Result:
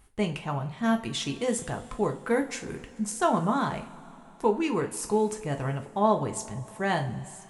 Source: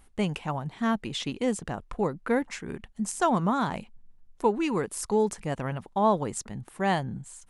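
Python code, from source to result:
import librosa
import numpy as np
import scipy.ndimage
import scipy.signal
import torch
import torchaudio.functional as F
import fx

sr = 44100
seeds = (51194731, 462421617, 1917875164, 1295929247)

y = fx.high_shelf(x, sr, hz=7400.0, db=10.0, at=(0.84, 2.91))
y = fx.rev_double_slope(y, sr, seeds[0], early_s=0.29, late_s=3.3, knee_db=-21, drr_db=3.5)
y = y * librosa.db_to_amplitude(-1.5)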